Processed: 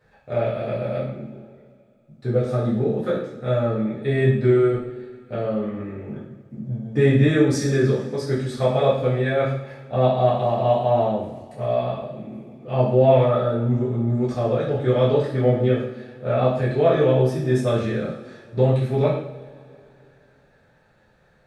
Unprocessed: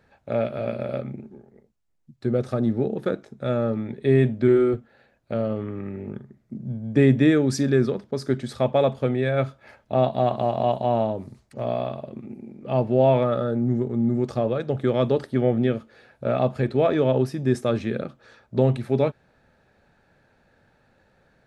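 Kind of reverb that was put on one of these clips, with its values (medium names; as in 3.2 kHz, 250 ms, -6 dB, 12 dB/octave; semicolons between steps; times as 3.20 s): two-slope reverb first 0.61 s, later 2.8 s, from -20 dB, DRR -8.5 dB; trim -6.5 dB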